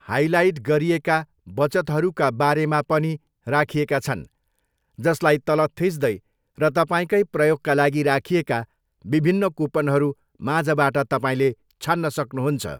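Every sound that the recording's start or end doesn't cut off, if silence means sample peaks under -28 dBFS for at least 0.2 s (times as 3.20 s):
1.57–3.16 s
3.47–4.22 s
4.99–6.16 s
6.60–8.63 s
9.07–10.12 s
10.42–11.52 s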